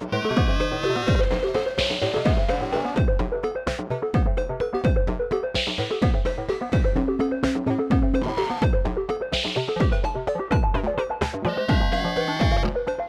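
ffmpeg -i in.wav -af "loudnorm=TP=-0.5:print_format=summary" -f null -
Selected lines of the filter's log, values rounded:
Input Integrated:    -23.8 LUFS
Input True Peak:      -7.9 dBTP
Input LRA:             0.9 LU
Input Threshold:     -33.8 LUFS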